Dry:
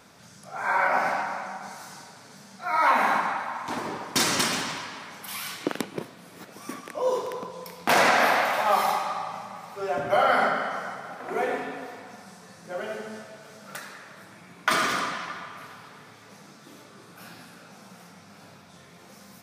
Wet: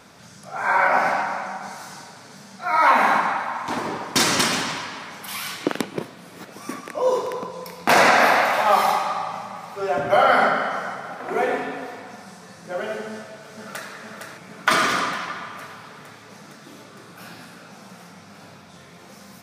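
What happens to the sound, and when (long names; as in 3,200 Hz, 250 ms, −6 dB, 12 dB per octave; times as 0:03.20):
0:06.60–0:08.56: notch filter 3,200 Hz
0:13.11–0:13.91: delay throw 460 ms, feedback 75%, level −5 dB
whole clip: high-shelf EQ 10,000 Hz −4.5 dB; level +5 dB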